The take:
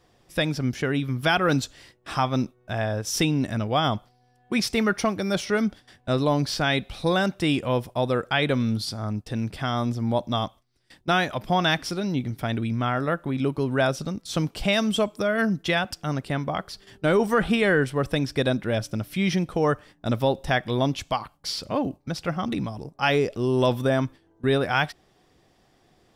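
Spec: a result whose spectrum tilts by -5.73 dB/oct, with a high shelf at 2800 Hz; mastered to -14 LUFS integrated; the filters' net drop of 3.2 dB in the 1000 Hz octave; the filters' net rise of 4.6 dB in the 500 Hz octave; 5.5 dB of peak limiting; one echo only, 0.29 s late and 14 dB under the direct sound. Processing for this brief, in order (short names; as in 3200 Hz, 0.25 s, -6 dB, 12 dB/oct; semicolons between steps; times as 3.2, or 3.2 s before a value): bell 500 Hz +8 dB; bell 1000 Hz -8 dB; high shelf 2800 Hz -6 dB; limiter -12.5 dBFS; echo 0.29 s -14 dB; gain +10.5 dB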